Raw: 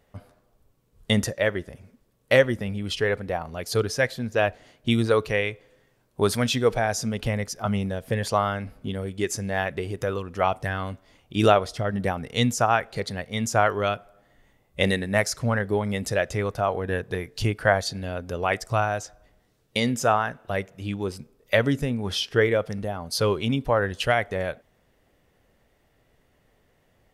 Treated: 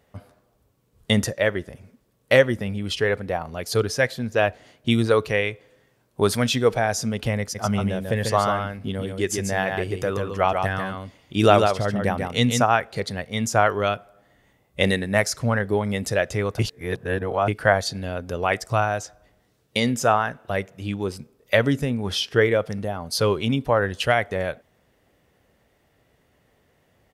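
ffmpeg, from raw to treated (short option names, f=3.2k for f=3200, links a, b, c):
-filter_complex "[0:a]asplit=3[a][b][c];[a]afade=t=out:st=7.54:d=0.02[d];[b]aecho=1:1:142:0.562,afade=t=in:st=7.54:d=0.02,afade=t=out:st=12.62:d=0.02[e];[c]afade=t=in:st=12.62:d=0.02[f];[d][e][f]amix=inputs=3:normalize=0,asplit=3[g][h][i];[g]atrim=end=16.592[j];[h]atrim=start=16.588:end=17.482,asetpts=PTS-STARTPTS,areverse[k];[i]atrim=start=17.478[l];[j][k]acrossfade=d=0.004:c1=hsin:c2=hsin[m];[m][l]acrossfade=d=0.004:c1=hsin:c2=hsin,highpass=54,volume=2dB"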